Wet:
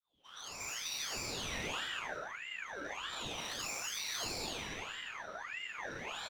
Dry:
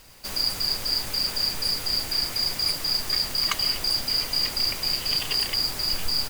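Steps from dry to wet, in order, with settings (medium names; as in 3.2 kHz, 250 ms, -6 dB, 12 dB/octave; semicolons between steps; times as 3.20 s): fade-in on the opening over 1.08 s; 3.33–3.93 s: differentiator; in parallel at +0.5 dB: peak limiter -21 dBFS, peak gain reduction 9 dB; 1.39–1.83 s: on the sum: waveshaping leveller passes 3; wah-wah 0.33 Hz 320–3700 Hz, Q 20; valve stage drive 46 dB, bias 0.45; on a send: frequency-shifting echo 83 ms, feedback 55%, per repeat +34 Hz, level -6.5 dB; on the sum: gated-style reverb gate 370 ms flat, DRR -2.5 dB; ring modulator with a swept carrier 1.7 kHz, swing 45%, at 1.6 Hz; trim +8 dB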